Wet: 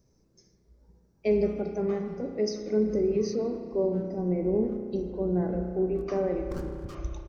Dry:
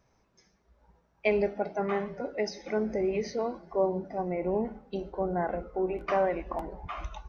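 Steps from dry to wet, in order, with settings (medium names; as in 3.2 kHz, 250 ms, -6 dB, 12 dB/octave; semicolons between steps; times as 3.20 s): 6.50–6.95 s: comb filter that takes the minimum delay 0.73 ms; high-order bell 1.5 kHz -15.5 dB 2.8 oct; speakerphone echo 160 ms, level -17 dB; spring tank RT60 2.2 s, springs 33 ms, chirp 45 ms, DRR 5 dB; trim +4 dB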